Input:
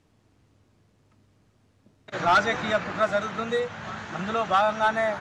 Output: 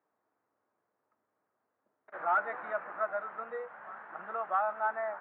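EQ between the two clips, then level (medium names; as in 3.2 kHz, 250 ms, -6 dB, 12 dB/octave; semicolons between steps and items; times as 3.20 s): high-pass 660 Hz 12 dB/octave; low-pass 1.6 kHz 24 dB/octave; distance through air 80 m; -6.5 dB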